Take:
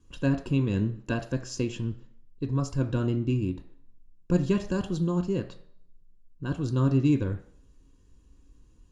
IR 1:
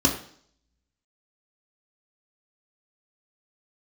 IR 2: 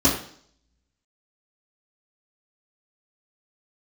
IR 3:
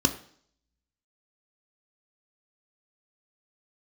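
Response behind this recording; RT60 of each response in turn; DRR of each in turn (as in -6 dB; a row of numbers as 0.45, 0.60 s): 3; 0.55, 0.55, 0.55 s; -1.5, -10.0, 6.0 dB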